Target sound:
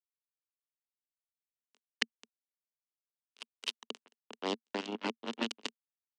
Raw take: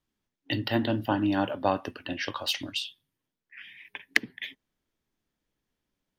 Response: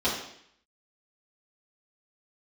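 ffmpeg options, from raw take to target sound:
-filter_complex "[0:a]areverse,asplit=2[a][b];[b]acompressor=threshold=-38dB:ratio=10,volume=-1dB[c];[a][c]amix=inputs=2:normalize=0,acrusher=bits=2:mix=0:aa=0.5,acrossover=split=340|3000[d][e][f];[e]acompressor=threshold=-35dB:ratio=6[g];[d][g][f]amix=inputs=3:normalize=0,highpass=f=230:w=0.5412,highpass=f=230:w=1.3066,equalizer=f=230:t=q:w=4:g=9,equalizer=f=430:t=q:w=4:g=7,equalizer=f=1k:t=q:w=4:g=3,equalizer=f=2.9k:t=q:w=4:g=7,lowpass=f=7.7k:w=0.5412,lowpass=f=7.7k:w=1.3066,volume=-4dB"

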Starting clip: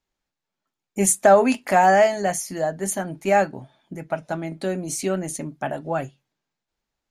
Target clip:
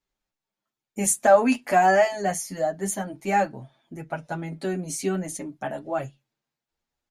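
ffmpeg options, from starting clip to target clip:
-filter_complex "[0:a]asplit=2[a][b];[b]adelay=7.5,afreqshift=0.38[c];[a][c]amix=inputs=2:normalize=1"

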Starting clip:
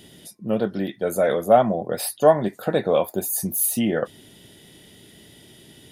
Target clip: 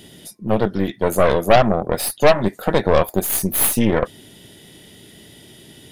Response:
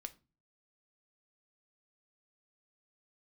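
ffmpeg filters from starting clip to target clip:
-af "aeval=exprs='0.75*(cos(1*acos(clip(val(0)/0.75,-1,1)))-cos(1*PI/2))+0.0944*(cos(5*acos(clip(val(0)/0.75,-1,1)))-cos(5*PI/2))+0.15*(cos(8*acos(clip(val(0)/0.75,-1,1)))-cos(8*PI/2))':c=same"

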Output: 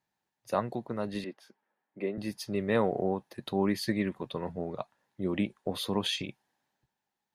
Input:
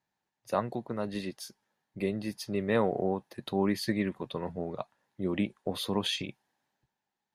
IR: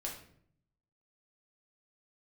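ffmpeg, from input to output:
-filter_complex "[0:a]asettb=1/sr,asplit=3[a][b][c];[a]atrim=end=1.244[d];[b]atrim=start=1.24:end=2.18,asetpts=PTS-STARTPTS,afade=t=in:d=0.004:c=qsin,afade=t=out:st=0.936:d=0.004:c=qsin,acrossover=split=210 2700:gain=0.0794 1 0.0891[e][f][g];[e][f][g]amix=inputs=3:normalize=0[h];[c]atrim=start=2.176[i];[d][h]acrossfade=d=0.004:c1=hsin:c2=qsin[j];[j][i]acrossfade=d=0.004:c1=qsin:c2=hsin"

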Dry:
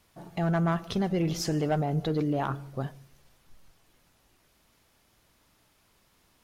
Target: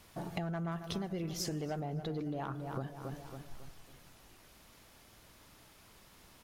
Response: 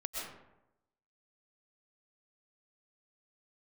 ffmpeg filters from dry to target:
-filter_complex "[0:a]asplit=2[a][b];[b]adelay=275,lowpass=f=3.7k:p=1,volume=-13dB,asplit=2[c][d];[d]adelay=275,lowpass=f=3.7k:p=1,volume=0.39,asplit=2[e][f];[f]adelay=275,lowpass=f=3.7k:p=1,volume=0.39,asplit=2[g][h];[h]adelay=275,lowpass=f=3.7k:p=1,volume=0.39[i];[a][c][e][g][i]amix=inputs=5:normalize=0,acompressor=threshold=-42dB:ratio=8,asettb=1/sr,asplit=3[j][k][l];[j]atrim=end=0.714[m];[k]atrim=start=0.71:end=1.8,asetpts=PTS-STARTPTS,afade=t=in:d=0.004:c=qsin,afade=t=out:st=1.086:d=0.004:c=qsin,highshelf=f=7.1k:g=6[n];[l]atrim=start=1.796[o];[m][n]acrossfade=d=0.004:c1=hsin:c2=qsin[p];[p][o]acrossfade=d=0.004:c1=qsin:c2=hsin,volume=6dB"

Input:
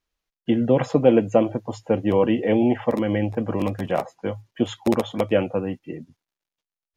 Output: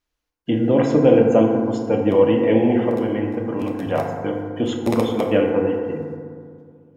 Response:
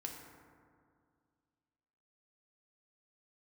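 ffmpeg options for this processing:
-filter_complex "[0:a]asettb=1/sr,asplit=3[a][b][c];[a]atrim=end=2.894[d];[b]atrim=start=2.89:end=3.83,asetpts=PTS-STARTPTS,afade=t=in:d=0.004:c=qsin,afade=t=out:st=0.936:d=0.004:c=qsin,acompressor=threshold=-30dB:ratio=1.5[e];[c]atrim=start=3.826[f];[d][e]acrossfade=d=0.004:c1=hsin:c2=qsin[g];[g][f]acrossfade=d=0.004:c1=qsin:c2=hsin[h];[1:a]atrim=start_sample=2205[i];[h][i]afir=irnorm=-1:irlink=0,volume=4.5dB"

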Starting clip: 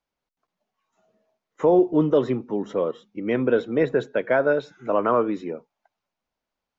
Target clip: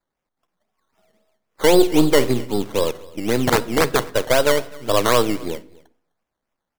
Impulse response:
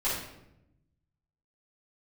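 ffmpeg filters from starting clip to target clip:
-filter_complex "[0:a]aeval=exprs='if(lt(val(0),0),0.447*val(0),val(0))':c=same,acrusher=samples=14:mix=1:aa=0.000001:lfo=1:lforange=8.4:lforate=3.8,asettb=1/sr,asplit=3[a][b][c];[a]atrim=end=1.764[d];[b]atrim=start=1.76:end=2.6,asetpts=PTS-STARTPTS,afade=t=in:d=0.004:c=qsin,afade=t=out:st=0.836:d=0.004:c=qsin,asplit=2[e][f];[f]adelay=49,volume=-12.5dB[g];[e][g]amix=inputs=2:normalize=0,atrim=end_sample=37044[h];[c]atrim=start=2.596[i];[d][h]acrossfade=d=0.004:c1=hsin:c2=qsin[j];[j][i]acrossfade=d=0.004:c1=qsin:c2=hsin,asettb=1/sr,asplit=3[k][l][m];[k]atrim=end=3.354[n];[l]atrim=start=3.35:end=4.03,asetpts=PTS-STARTPTS,afade=t=in:d=0.004:c=qsin,afade=t=out:st=0.676:d=0.004:c=qsin,aeval=exprs='(mod(4.73*val(0)+1,2)-1)/4.73':c=same[o];[m]atrim=start=4.026[p];[n][o]acrossfade=d=0.004:c1=hsin:c2=qsin[q];[q][p]acrossfade=d=0.004:c1=qsin:c2=hsin,aecho=1:1:255:0.0668,asplit=2[r][s];[1:a]atrim=start_sample=2205,afade=t=out:st=0.45:d=0.01,atrim=end_sample=20286[t];[s][t]afir=irnorm=-1:irlink=0,volume=-26dB[u];[r][u]amix=inputs=2:normalize=0,volume=5.5dB"

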